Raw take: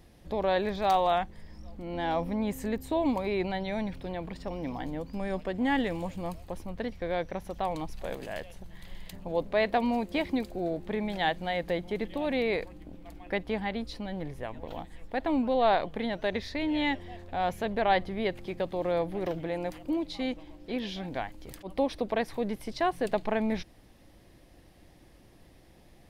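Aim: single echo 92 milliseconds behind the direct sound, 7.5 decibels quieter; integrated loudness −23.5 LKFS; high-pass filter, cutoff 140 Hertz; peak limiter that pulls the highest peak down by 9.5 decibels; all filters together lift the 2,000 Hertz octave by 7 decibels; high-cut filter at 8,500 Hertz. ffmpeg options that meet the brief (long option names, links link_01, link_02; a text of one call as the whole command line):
ffmpeg -i in.wav -af "highpass=140,lowpass=8500,equalizer=frequency=2000:width_type=o:gain=8,alimiter=limit=-19dB:level=0:latency=1,aecho=1:1:92:0.422,volume=7.5dB" out.wav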